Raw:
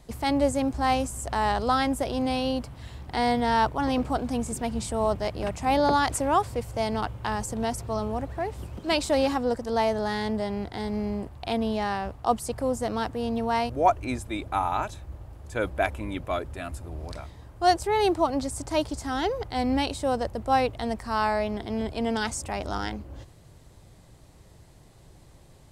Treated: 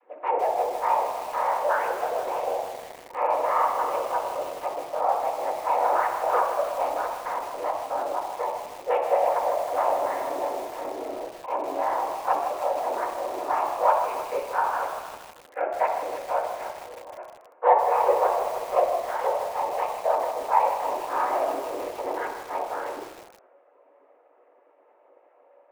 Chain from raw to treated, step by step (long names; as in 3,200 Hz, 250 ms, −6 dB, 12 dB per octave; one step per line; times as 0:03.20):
vocoder with a gliding carrier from D#3, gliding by +4 semitones
reverb reduction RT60 0.5 s
in parallel at −12 dB: wave folding −24 dBFS
on the sum: random phases in short frames
pitch vibrato 12 Hz 6 cents
delay with a high-pass on its return 62 ms, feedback 69%, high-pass 1,600 Hz, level −10.5 dB
on a send at −1.5 dB: convolution reverb RT60 1.0 s, pre-delay 3 ms
on the sum: single-sideband voice off tune +110 Hz 440–2,400 Hz
feedback echo at a low word length 157 ms, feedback 80%, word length 6 bits, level −10.5 dB